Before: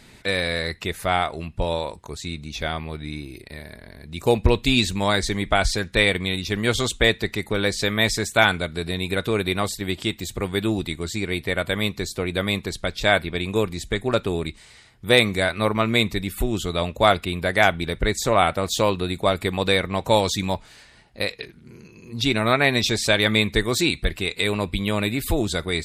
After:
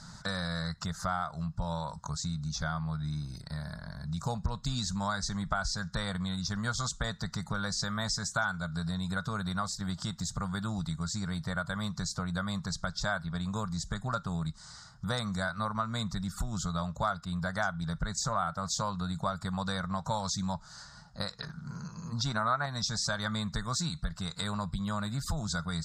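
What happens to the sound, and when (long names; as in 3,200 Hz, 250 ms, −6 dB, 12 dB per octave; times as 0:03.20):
0:21.42–0:22.66: parametric band 860 Hz +7.5 dB 2.9 octaves
whole clip: drawn EQ curve 110 Hz 0 dB, 160 Hz +10 dB, 360 Hz −21 dB, 610 Hz −4 dB, 1,400 Hz +8 dB, 2,400 Hz −23 dB, 5,000 Hz +7 dB, 7,100 Hz +5 dB, 11,000 Hz −15 dB; downward compressor 3 to 1, threshold −33 dBFS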